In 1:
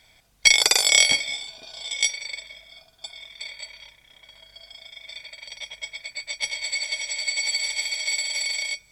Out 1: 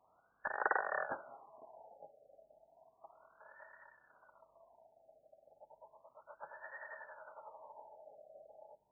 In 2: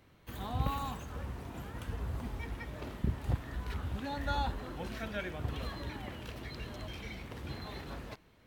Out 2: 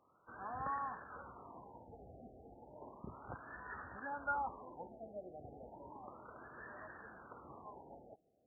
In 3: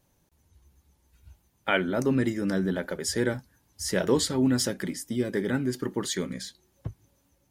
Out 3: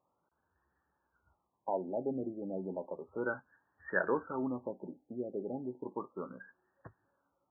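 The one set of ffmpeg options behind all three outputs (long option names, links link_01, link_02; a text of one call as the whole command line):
ffmpeg -i in.wav -af "aderivative,afftfilt=real='re*lt(b*sr/1024,800*pow(1900/800,0.5+0.5*sin(2*PI*0.33*pts/sr)))':imag='im*lt(b*sr/1024,800*pow(1900/800,0.5+0.5*sin(2*PI*0.33*pts/sr)))':win_size=1024:overlap=0.75,volume=15.5dB" out.wav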